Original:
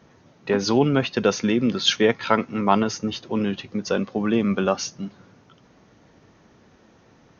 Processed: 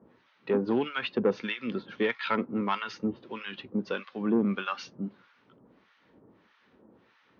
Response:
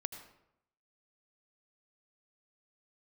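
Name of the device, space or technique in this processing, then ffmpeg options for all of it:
guitar amplifier with harmonic tremolo: -filter_complex "[0:a]acrossover=split=990[link_01][link_02];[link_01]aeval=exprs='val(0)*(1-1/2+1/2*cos(2*PI*1.6*n/s))':channel_layout=same[link_03];[link_02]aeval=exprs='val(0)*(1-1/2-1/2*cos(2*PI*1.6*n/s))':channel_layout=same[link_04];[link_03][link_04]amix=inputs=2:normalize=0,asoftclip=type=tanh:threshold=-15.5dB,highpass=94,equalizer=frequency=96:width_type=q:width=4:gain=-10,equalizer=frequency=150:width_type=q:width=4:gain=-9,equalizer=frequency=700:width_type=q:width=4:gain=-7,lowpass=frequency=3900:width=0.5412,lowpass=frequency=3900:width=1.3066"

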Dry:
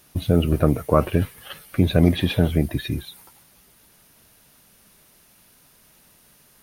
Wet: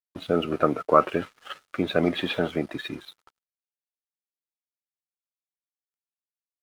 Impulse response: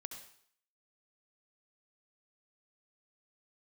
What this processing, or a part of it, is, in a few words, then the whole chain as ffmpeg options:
pocket radio on a weak battery: -af "highpass=330,lowpass=4200,aeval=exprs='sgn(val(0))*max(abs(val(0))-0.00335,0)':channel_layout=same,equalizer=frequency=1300:width_type=o:width=0.29:gain=9"

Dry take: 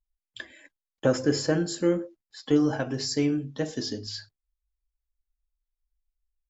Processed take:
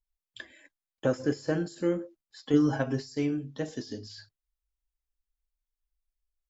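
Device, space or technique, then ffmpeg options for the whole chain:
de-esser from a sidechain: -filter_complex "[0:a]asettb=1/sr,asplit=3[link_01][link_02][link_03];[link_01]atrim=end=2.534[link_04];[link_02]atrim=start=2.53:end=3.15,asetpts=PTS-STARTPTS,afade=type=in:duration=0.004:curve=qsin,afade=type=out:start_time=0.616:duration=0.004:curve=qsin,aecho=1:1:7.4:0.88,atrim=end_sample=27342[link_05];[link_03]atrim=start=3.146[link_06];[link_04][link_05]acrossfade=duration=0.004:curve1=hsin:curve2=qsin[link_07];[link_07][link_06]acrossfade=duration=0.004:curve1=qsin:curve2=hsin,asplit=2[link_08][link_09];[link_09]highpass=frequency=5500:width=0.5412,highpass=frequency=5500:width=1.3066,apad=whole_len=286393[link_10];[link_08][link_10]sidechaincompress=threshold=-44dB:ratio=12:attack=1.7:release=35,volume=-4dB"

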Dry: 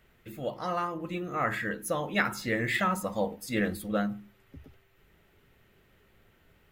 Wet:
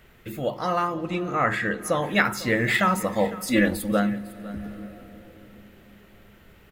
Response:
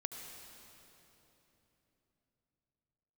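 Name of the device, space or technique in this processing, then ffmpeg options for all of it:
ducked reverb: -filter_complex "[0:a]asettb=1/sr,asplit=3[link_01][link_02][link_03];[link_01]atrim=end=3.434[link_04];[link_02]atrim=start=3.43:end=3.92,asetpts=PTS-STARTPTS,afade=type=in:duration=0.004:curve=qsin,afade=type=out:start_time=0.486:duration=0.004:curve=qsin,aecho=1:1:3.5:0.88,atrim=end_sample=21609[link_05];[link_03]atrim=start=3.916[link_06];[link_04][link_05]acrossfade=duration=0.004:curve1=hsin:curve2=qsin[link_07];[link_07][link_06]acrossfade=duration=0.004:curve1=qsin:curve2=hsin,asplit=3[link_08][link_09][link_10];[1:a]atrim=start_sample=2205[link_11];[link_09][link_11]afir=irnorm=-1:irlink=0[link_12];[link_10]apad=whole_len=296199[link_13];[link_12][link_13]sidechaincompress=threshold=-40dB:ratio=4:attack=5.7:release=641,volume=-2.5dB[link_14];[link_08][link_14]amix=inputs=2:normalize=0,asettb=1/sr,asplit=3[link_15][link_16][link_17];[link_15]atrim=end=0.944[link_18];[link_16]atrim=start=0.94:end=2.02,asetpts=PTS-STARTPTS,afade=type=in:duration=0.004:curve=qsin,afade=type=out:start_time=1.076:duration=0.004:curve=qsin,lowpass=10000[link_19];[link_17]atrim=start=2.016[link_20];[link_18][link_19]acrossfade=duration=0.004:curve1=hsin:curve2=qsin[link_21];[link_21][link_20]acrossfade=duration=0.004:curve1=qsin:curve2=hsin,aecho=1:1:503:0.126,volume=5.5dB"

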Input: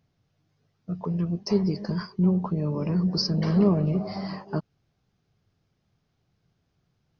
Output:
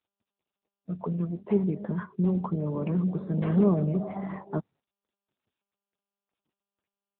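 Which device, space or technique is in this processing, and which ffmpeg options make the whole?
mobile call with aggressive noise cancelling: -af "highpass=frequency=150:poles=1,afftdn=noise_reduction=30:noise_floor=-49" -ar 8000 -c:a libopencore_amrnb -b:a 10200

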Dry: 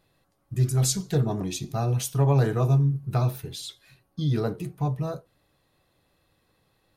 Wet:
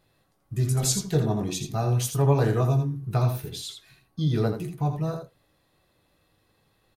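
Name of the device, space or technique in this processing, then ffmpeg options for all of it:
slapback doubling: -filter_complex "[0:a]asplit=3[link_01][link_02][link_03];[link_02]adelay=19,volume=-8.5dB[link_04];[link_03]adelay=82,volume=-7dB[link_05];[link_01][link_04][link_05]amix=inputs=3:normalize=0"

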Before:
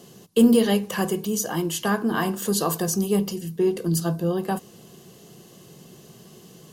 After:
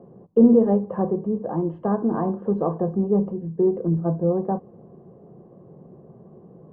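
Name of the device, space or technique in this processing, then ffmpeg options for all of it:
under water: -filter_complex "[0:a]lowpass=frequency=950:width=0.5412,lowpass=frequency=950:width=1.3066,equalizer=frequency=540:width_type=o:width=0.24:gain=5,asettb=1/sr,asplit=3[link_01][link_02][link_03];[link_01]atrim=end=0.994[link_04];[link_02]atrim=start=0.99:end=1.44,asetpts=PTS-STARTPTS,afade=type=in:duration=0.004:curve=qsin,afade=type=out:start_time=0.446:duration=0.004:curve=qsin,lowpass=2600[link_05];[link_03]atrim=start=1.436[link_06];[link_04][link_05]acrossfade=duration=0.004:curve1=hsin:curve2=qsin[link_07];[link_07][link_06]acrossfade=duration=0.004:curve1=qsin:curve2=hsin,volume=1.5dB"

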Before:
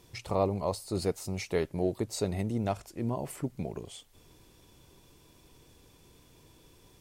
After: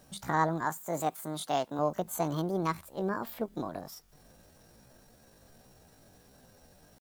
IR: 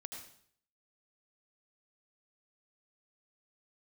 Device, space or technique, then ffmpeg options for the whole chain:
chipmunk voice: -filter_complex "[0:a]asetrate=72056,aresample=44100,atempo=0.612027,asettb=1/sr,asplit=3[link_01][link_02][link_03];[link_01]atrim=end=0.654[link_04];[link_02]atrim=start=0.65:end=1.79,asetpts=PTS-STARTPTS,afade=type=in:duration=0.004:curve=qsin,afade=type=out:start_time=1.136:duration=0.004:curve=qsin,highpass=frequency=230:poles=1[link_05];[link_03]atrim=start=1.786[link_06];[link_04][link_05]acrossfade=duration=0.004:curve1=hsin:curve2=qsin[link_07];[link_07][link_06]acrossfade=duration=0.004:curve1=qsin:curve2=hsin"

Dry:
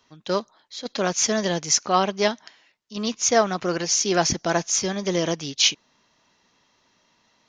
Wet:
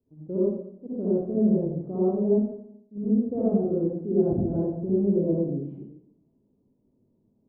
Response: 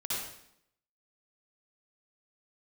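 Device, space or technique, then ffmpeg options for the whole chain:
next room: -filter_complex "[0:a]lowpass=frequency=410:width=0.5412,lowpass=frequency=410:width=1.3066[link_01];[1:a]atrim=start_sample=2205[link_02];[link_01][link_02]afir=irnorm=-1:irlink=0"

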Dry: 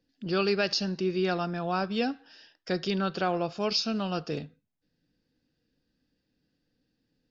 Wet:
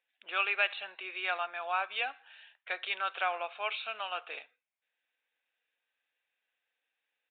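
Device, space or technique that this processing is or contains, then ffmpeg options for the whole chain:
musical greeting card: -af "aresample=8000,aresample=44100,highpass=frequency=740:width=0.5412,highpass=frequency=740:width=1.3066,equalizer=frequency=2300:width_type=o:width=0.33:gain=9.5"

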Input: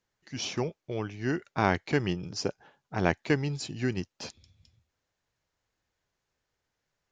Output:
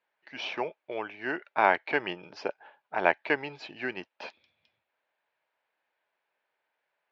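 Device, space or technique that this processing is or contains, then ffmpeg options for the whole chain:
phone earpiece: -af "highpass=430,equalizer=frequency=620:width_type=q:width=4:gain=6,equalizer=frequency=900:width_type=q:width=4:gain=7,equalizer=frequency=1600:width_type=q:width=4:gain=5,equalizer=frequency=2400:width_type=q:width=4:gain=6,lowpass=frequency=3600:width=0.5412,lowpass=frequency=3600:width=1.3066"

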